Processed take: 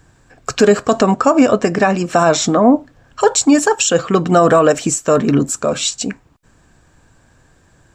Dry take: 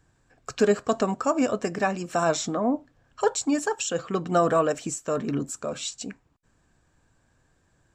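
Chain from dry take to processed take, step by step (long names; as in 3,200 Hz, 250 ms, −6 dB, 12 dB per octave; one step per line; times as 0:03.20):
0:01.02–0:02.42: high-shelf EQ 8,900 Hz −10.5 dB
boost into a limiter +15 dB
level −1 dB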